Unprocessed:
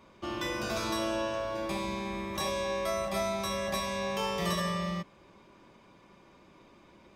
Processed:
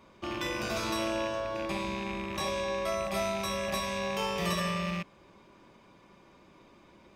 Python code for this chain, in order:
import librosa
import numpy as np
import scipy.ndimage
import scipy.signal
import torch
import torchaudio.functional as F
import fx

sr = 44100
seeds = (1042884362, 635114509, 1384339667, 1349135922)

y = fx.rattle_buzz(x, sr, strikes_db=-40.0, level_db=-29.0)
y = fx.high_shelf(y, sr, hz=10000.0, db=-7.5, at=(1.4, 3.05))